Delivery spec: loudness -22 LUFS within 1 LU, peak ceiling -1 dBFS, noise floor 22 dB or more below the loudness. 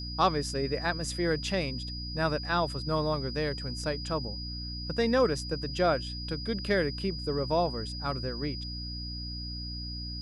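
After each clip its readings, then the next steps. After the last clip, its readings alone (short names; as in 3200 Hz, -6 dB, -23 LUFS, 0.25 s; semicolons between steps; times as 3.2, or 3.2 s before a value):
hum 60 Hz; harmonics up to 300 Hz; hum level -37 dBFS; steady tone 4900 Hz; tone level -39 dBFS; loudness -31.0 LUFS; peak -11.0 dBFS; loudness target -22.0 LUFS
-> notches 60/120/180/240/300 Hz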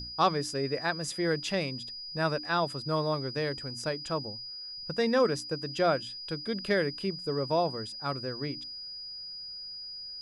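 hum none; steady tone 4900 Hz; tone level -39 dBFS
-> notch 4900 Hz, Q 30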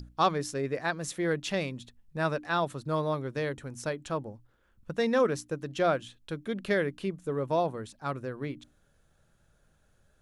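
steady tone none; loudness -31.5 LUFS; peak -11.5 dBFS; loudness target -22.0 LUFS
-> gain +9.5 dB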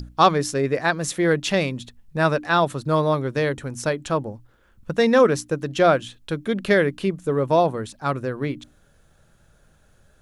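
loudness -22.0 LUFS; peak -2.0 dBFS; noise floor -58 dBFS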